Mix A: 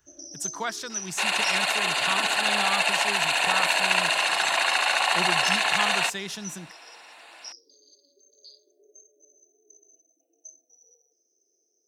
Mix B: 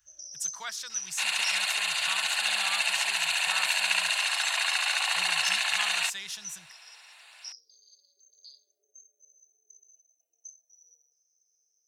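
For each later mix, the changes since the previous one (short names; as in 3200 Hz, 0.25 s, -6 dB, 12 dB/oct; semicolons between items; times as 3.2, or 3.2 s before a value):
master: add passive tone stack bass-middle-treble 10-0-10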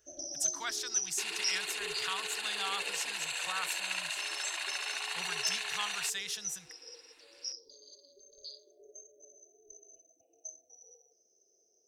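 first sound: remove pre-emphasis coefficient 0.97; second sound -10.0 dB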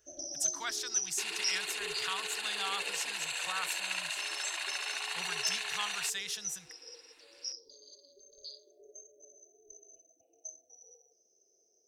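none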